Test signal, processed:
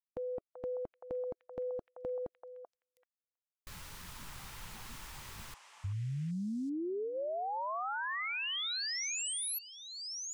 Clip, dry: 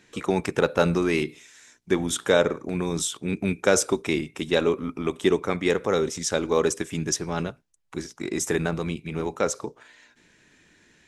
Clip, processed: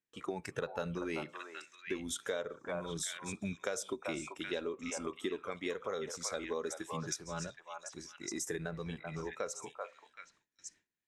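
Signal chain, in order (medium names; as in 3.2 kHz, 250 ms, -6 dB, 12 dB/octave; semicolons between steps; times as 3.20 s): spectral noise reduction 9 dB; repeats whose band climbs or falls 385 ms, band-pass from 910 Hz, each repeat 1.4 oct, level -2 dB; compression 4:1, threshold -27 dBFS; gate with hold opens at -44 dBFS; trim -8 dB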